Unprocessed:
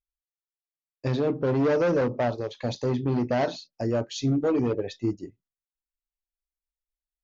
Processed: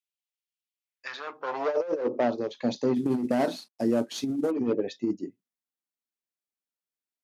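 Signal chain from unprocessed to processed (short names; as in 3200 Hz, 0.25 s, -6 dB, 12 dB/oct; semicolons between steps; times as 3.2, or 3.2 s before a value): 2.95–4.51 CVSD 64 kbps; high-pass sweep 2700 Hz -> 230 Hz, 0.75–2.39; negative-ratio compressor -21 dBFS, ratio -0.5; gain -3.5 dB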